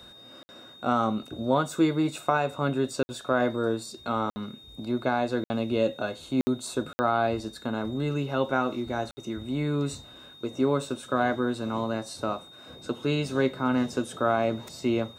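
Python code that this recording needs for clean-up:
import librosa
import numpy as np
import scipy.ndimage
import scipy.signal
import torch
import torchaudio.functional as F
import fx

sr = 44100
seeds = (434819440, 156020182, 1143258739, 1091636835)

y = fx.notch(x, sr, hz=3700.0, q=30.0)
y = fx.fix_interpolate(y, sr, at_s=(0.43, 3.03, 4.3, 5.44, 6.41, 6.93, 9.11), length_ms=60.0)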